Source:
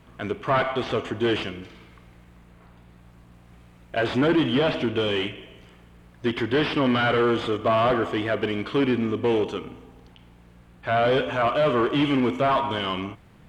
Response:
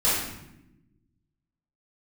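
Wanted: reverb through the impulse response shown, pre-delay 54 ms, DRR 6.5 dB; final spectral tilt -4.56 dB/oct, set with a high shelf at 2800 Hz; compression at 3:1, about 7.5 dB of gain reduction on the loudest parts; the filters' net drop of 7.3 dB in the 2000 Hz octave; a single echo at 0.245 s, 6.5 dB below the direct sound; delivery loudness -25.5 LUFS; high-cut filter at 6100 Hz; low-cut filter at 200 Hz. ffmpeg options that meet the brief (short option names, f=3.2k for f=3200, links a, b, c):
-filter_complex "[0:a]highpass=200,lowpass=6.1k,equalizer=f=2k:t=o:g=-7,highshelf=f=2.8k:g=-9,acompressor=threshold=-29dB:ratio=3,aecho=1:1:245:0.473,asplit=2[a][b];[1:a]atrim=start_sample=2205,adelay=54[c];[b][c]afir=irnorm=-1:irlink=0,volume=-21dB[d];[a][d]amix=inputs=2:normalize=0,volume=4.5dB"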